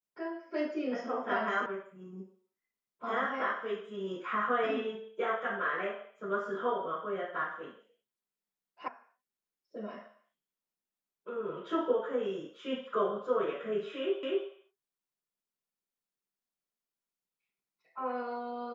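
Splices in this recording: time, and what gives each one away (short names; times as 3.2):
1.66 sound cut off
8.88 sound cut off
14.23 repeat of the last 0.25 s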